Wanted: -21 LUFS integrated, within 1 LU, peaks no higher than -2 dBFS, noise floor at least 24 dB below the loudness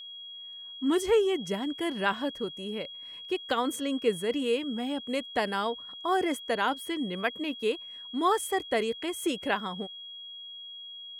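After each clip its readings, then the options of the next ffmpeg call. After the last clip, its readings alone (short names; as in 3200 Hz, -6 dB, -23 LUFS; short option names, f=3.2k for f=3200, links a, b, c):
steady tone 3300 Hz; tone level -41 dBFS; loudness -30.0 LUFS; peak -13.0 dBFS; loudness target -21.0 LUFS
-> -af "bandreject=f=3.3k:w=30"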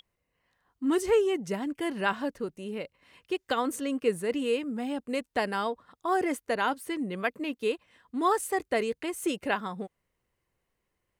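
steady tone none; loudness -30.5 LUFS; peak -13.0 dBFS; loudness target -21.0 LUFS
-> -af "volume=9.5dB"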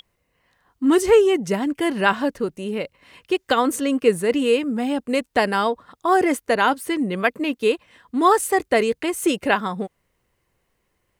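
loudness -21.0 LUFS; peak -3.5 dBFS; noise floor -72 dBFS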